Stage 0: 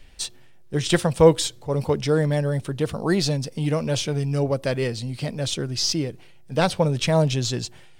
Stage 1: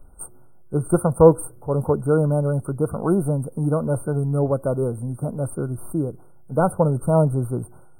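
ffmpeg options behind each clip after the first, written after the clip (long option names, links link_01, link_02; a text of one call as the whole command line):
ffmpeg -i in.wav -af "afftfilt=real='re*(1-between(b*sr/4096,1500,8500))':imag='im*(1-between(b*sr/4096,1500,8500))':win_size=4096:overlap=0.75,volume=2dB" out.wav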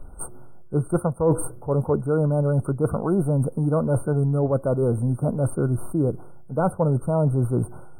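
ffmpeg -i in.wav -af "highshelf=frequency=6700:gain=-10,areverse,acompressor=threshold=-26dB:ratio=6,areverse,volume=7.5dB" out.wav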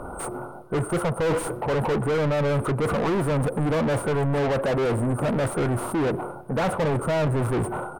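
ffmpeg -i in.wav -filter_complex "[0:a]asplit=2[link_01][link_02];[link_02]highpass=frequency=720:poles=1,volume=37dB,asoftclip=type=tanh:threshold=-9dB[link_03];[link_01][link_03]amix=inputs=2:normalize=0,lowpass=frequency=2200:poles=1,volume=-6dB,asplit=2[link_04][link_05];[link_05]adelay=119,lowpass=frequency=2300:poles=1,volume=-21.5dB,asplit=2[link_06][link_07];[link_07]adelay=119,lowpass=frequency=2300:poles=1,volume=0.54,asplit=2[link_08][link_09];[link_09]adelay=119,lowpass=frequency=2300:poles=1,volume=0.54,asplit=2[link_10][link_11];[link_11]adelay=119,lowpass=frequency=2300:poles=1,volume=0.54[link_12];[link_04][link_06][link_08][link_10][link_12]amix=inputs=5:normalize=0,volume=-7.5dB" out.wav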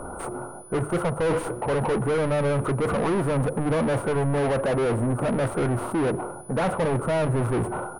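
ffmpeg -i in.wav -af "aeval=exprs='val(0)+0.0126*sin(2*PI*9900*n/s)':channel_layout=same,highshelf=frequency=5800:gain=-9.5,bandreject=frequency=50:width_type=h:width=6,bandreject=frequency=100:width_type=h:width=6,bandreject=frequency=150:width_type=h:width=6" out.wav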